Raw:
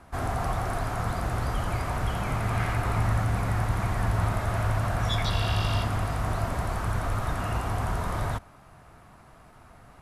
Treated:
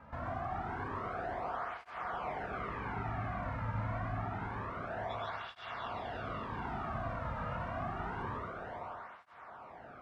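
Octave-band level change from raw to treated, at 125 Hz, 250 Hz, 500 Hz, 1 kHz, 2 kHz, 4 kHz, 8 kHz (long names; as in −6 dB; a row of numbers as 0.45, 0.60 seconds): −15.5 dB, −10.0 dB, −7.5 dB, −6.5 dB, −8.5 dB, −16.5 dB, below −25 dB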